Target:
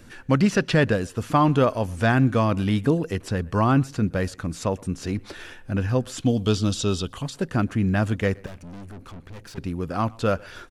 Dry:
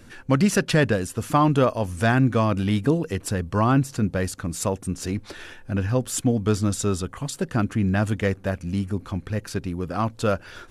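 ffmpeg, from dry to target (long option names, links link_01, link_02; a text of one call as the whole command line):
ffmpeg -i in.wav -filter_complex "[0:a]asettb=1/sr,asplit=3[link_01][link_02][link_03];[link_01]atrim=end=6.204[link_04];[link_02]atrim=start=6.2:end=7.22,asetpts=PTS-STARTPTS,afade=type=in:duration=0.004:curve=qsin,afade=type=out:start_time=1.016:duration=0.004:curve=qsin,highshelf=frequency=2500:width_type=q:width=3:gain=6[link_05];[link_03]atrim=start=7.216[link_06];[link_04][link_05]acrossfade=duration=0.004:curve1=hsin:curve2=qsin[link_07];[link_07][link_06]acrossfade=duration=0.004:curve1=qsin:curve2=hsin,acrossover=split=5700[link_08][link_09];[link_09]acompressor=threshold=-47dB:ratio=4:attack=1:release=60[link_10];[link_08][link_10]amix=inputs=2:normalize=0,asettb=1/sr,asplit=3[link_11][link_12][link_13];[link_11]atrim=end=8.464[link_14];[link_12]atrim=start=8.46:end=9.58,asetpts=PTS-STARTPTS,afade=type=in:duration=0.004:curve=qsin,afade=type=out:start_time=1.116:duration=0.004:curve=qsin,aeval=exprs='(tanh(79.4*val(0)+0.45)-tanh(0.45))/79.4':channel_layout=same[link_15];[link_13]atrim=start=9.576[link_16];[link_14][link_15]acrossfade=duration=0.004:curve1=hsin:curve2=qsin[link_17];[link_17][link_16]acrossfade=duration=0.004:curve1=qsin:curve2=hsin,asplit=2[link_18][link_19];[link_19]adelay=120,highpass=300,lowpass=3400,asoftclip=type=hard:threshold=-16dB,volume=-24dB[link_20];[link_18][link_20]amix=inputs=2:normalize=0" out.wav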